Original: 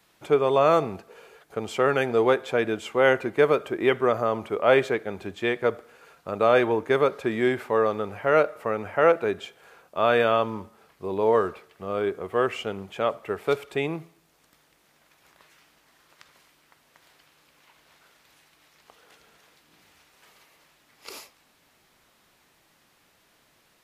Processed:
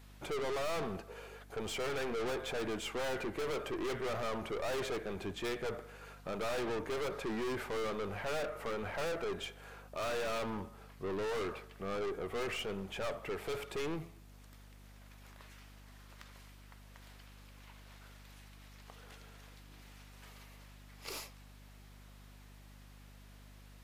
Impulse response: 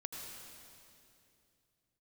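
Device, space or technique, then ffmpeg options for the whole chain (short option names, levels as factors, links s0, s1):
valve amplifier with mains hum: -af "aeval=exprs='(tanh(56.2*val(0)+0.3)-tanh(0.3))/56.2':c=same,aeval=exprs='val(0)+0.00178*(sin(2*PI*50*n/s)+sin(2*PI*2*50*n/s)/2+sin(2*PI*3*50*n/s)/3+sin(2*PI*4*50*n/s)/4+sin(2*PI*5*50*n/s)/5)':c=same"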